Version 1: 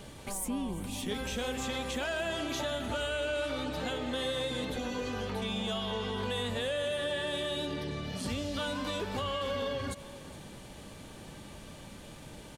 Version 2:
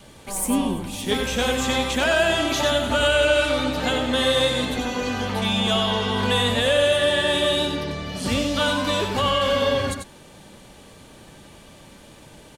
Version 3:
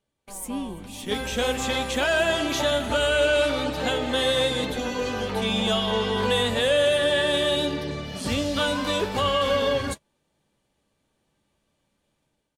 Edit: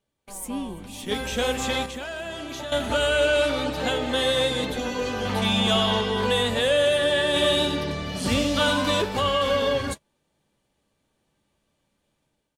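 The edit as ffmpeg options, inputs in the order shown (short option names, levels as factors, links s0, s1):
-filter_complex "[1:a]asplit=2[s0][s1];[2:a]asplit=4[s2][s3][s4][s5];[s2]atrim=end=1.862[s6];[0:a]atrim=start=1.858:end=2.722[s7];[s3]atrim=start=2.718:end=5.252[s8];[s0]atrim=start=5.248:end=6.012[s9];[s4]atrim=start=6.008:end=7.362[s10];[s1]atrim=start=7.358:end=9.022[s11];[s5]atrim=start=9.018[s12];[s6][s7]acrossfade=d=0.004:c1=hsin:c2=hsin[s13];[s13][s8]acrossfade=d=0.004:c1=hsin:c2=hsin[s14];[s14][s9]acrossfade=d=0.004:c1=hsin:c2=hsin[s15];[s15][s10]acrossfade=d=0.004:c1=hsin:c2=hsin[s16];[s16][s11]acrossfade=d=0.004:c1=hsin:c2=hsin[s17];[s17][s12]acrossfade=d=0.004:c1=hsin:c2=hsin"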